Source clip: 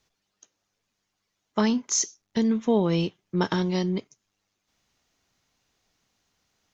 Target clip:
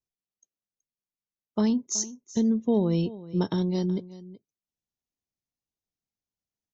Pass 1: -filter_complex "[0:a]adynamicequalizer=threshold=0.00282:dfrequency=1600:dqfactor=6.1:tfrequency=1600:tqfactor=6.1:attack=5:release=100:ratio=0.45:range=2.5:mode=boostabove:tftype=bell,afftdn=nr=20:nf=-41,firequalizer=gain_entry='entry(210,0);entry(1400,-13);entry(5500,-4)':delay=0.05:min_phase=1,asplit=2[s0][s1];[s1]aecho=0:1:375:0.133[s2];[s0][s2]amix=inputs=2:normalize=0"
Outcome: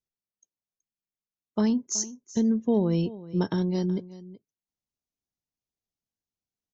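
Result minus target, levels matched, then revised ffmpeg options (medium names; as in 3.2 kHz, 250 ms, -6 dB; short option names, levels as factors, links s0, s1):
2 kHz band +2.5 dB
-filter_complex "[0:a]adynamicequalizer=threshold=0.00282:dfrequency=3700:dqfactor=6.1:tfrequency=3700:tqfactor=6.1:attack=5:release=100:ratio=0.45:range=2.5:mode=boostabove:tftype=bell,afftdn=nr=20:nf=-41,firequalizer=gain_entry='entry(210,0);entry(1400,-13);entry(5500,-4)':delay=0.05:min_phase=1,asplit=2[s0][s1];[s1]aecho=0:1:375:0.133[s2];[s0][s2]amix=inputs=2:normalize=0"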